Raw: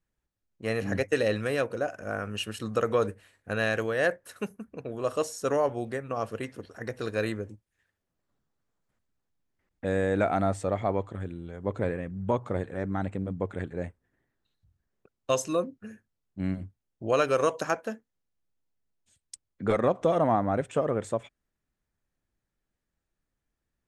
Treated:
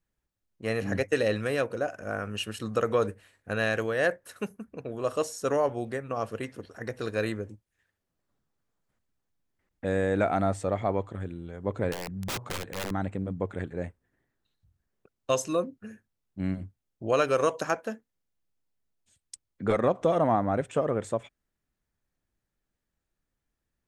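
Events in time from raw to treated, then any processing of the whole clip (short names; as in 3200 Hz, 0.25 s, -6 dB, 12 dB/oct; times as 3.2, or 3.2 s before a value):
11.92–12.91 wrapped overs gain 27.5 dB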